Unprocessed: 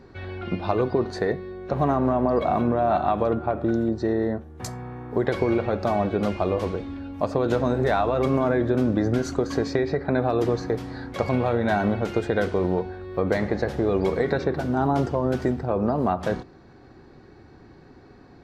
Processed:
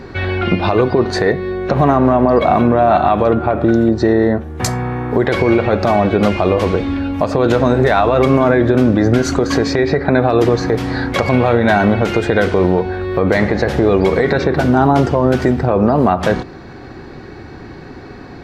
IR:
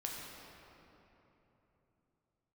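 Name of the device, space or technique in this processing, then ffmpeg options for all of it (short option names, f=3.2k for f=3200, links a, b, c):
mastering chain: -af "equalizer=f=2.3k:t=o:w=1.4:g=4,acompressor=threshold=-27dB:ratio=2,alimiter=level_in=16.5dB:limit=-1dB:release=50:level=0:latency=1,volume=-1dB"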